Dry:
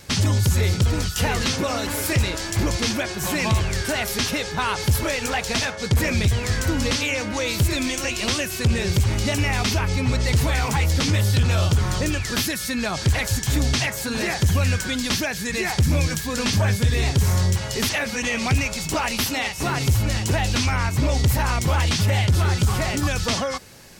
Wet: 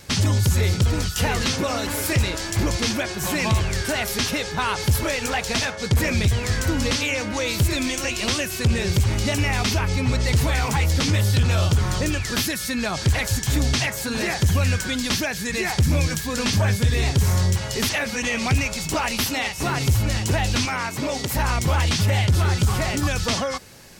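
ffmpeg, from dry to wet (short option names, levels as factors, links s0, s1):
-filter_complex "[0:a]asettb=1/sr,asplit=3[s0][s1][s2];[s0]atrim=end=20.654[s3];[s1]atrim=start=20.65:end=21.35,asetpts=PTS-STARTPTS,afade=t=in:d=0.004:c=qsin,afade=t=out:st=0.696:d=0.004:c=qsin,highpass=220[s4];[s2]atrim=start=21.346[s5];[s3][s4]acrossfade=d=0.004:c1=hsin:c2=qsin[s6];[s6][s5]acrossfade=d=0.004:c1=qsin:c2=hsin"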